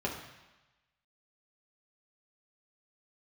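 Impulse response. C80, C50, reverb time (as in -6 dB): 8.0 dB, 6.0 dB, 1.1 s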